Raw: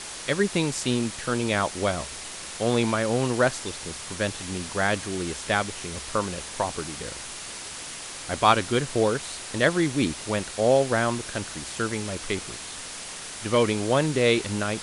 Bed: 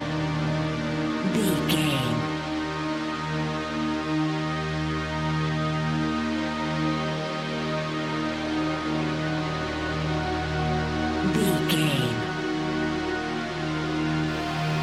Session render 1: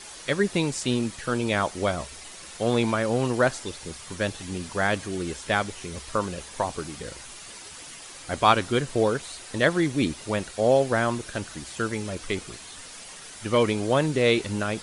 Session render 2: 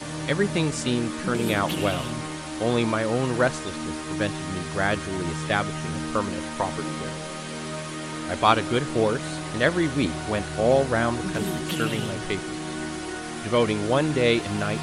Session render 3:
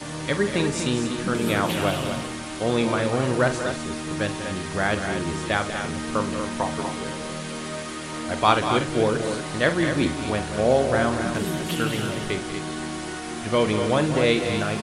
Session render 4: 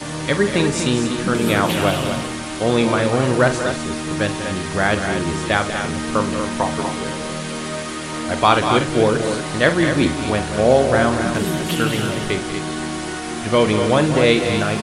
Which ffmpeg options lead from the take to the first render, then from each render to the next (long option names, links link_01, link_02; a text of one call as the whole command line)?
ffmpeg -i in.wav -af "afftdn=noise_reduction=8:noise_floor=-38" out.wav
ffmpeg -i in.wav -i bed.wav -filter_complex "[1:a]volume=-5.5dB[link_01];[0:a][link_01]amix=inputs=2:normalize=0" out.wav
ffmpeg -i in.wav -filter_complex "[0:a]asplit=2[link_01][link_02];[link_02]adelay=47,volume=-11dB[link_03];[link_01][link_03]amix=inputs=2:normalize=0,aecho=1:1:189.5|242:0.282|0.398" out.wav
ffmpeg -i in.wav -af "volume=5.5dB,alimiter=limit=-1dB:level=0:latency=1" out.wav